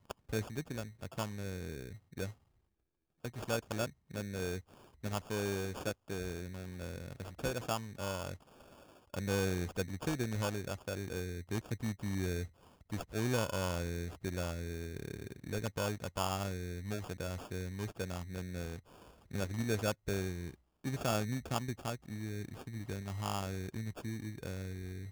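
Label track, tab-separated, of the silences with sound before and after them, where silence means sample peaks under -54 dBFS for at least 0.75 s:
2.330000	3.240000	silence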